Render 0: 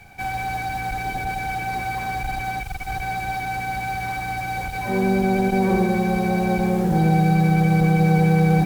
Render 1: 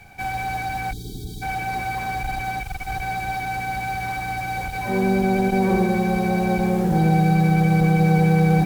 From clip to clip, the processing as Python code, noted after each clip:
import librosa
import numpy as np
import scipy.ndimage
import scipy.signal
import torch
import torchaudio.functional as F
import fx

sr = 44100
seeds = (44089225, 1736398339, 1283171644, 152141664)

y = fx.spec_box(x, sr, start_s=0.92, length_s=0.5, low_hz=460.0, high_hz=3100.0, gain_db=-30)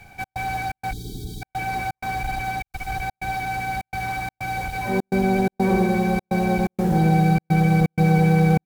y = fx.step_gate(x, sr, bpm=126, pattern='xx.xxx.xxx', floor_db=-60.0, edge_ms=4.5)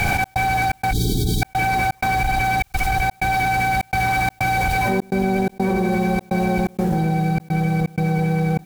y = fx.env_flatten(x, sr, amount_pct=100)
y = y * librosa.db_to_amplitude(-4.0)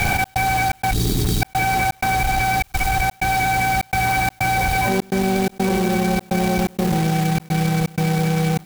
y = fx.quant_companded(x, sr, bits=4)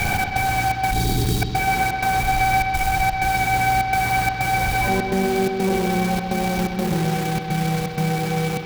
y = fx.echo_bbd(x, sr, ms=128, stages=4096, feedback_pct=62, wet_db=-6)
y = y * librosa.db_to_amplitude(-2.5)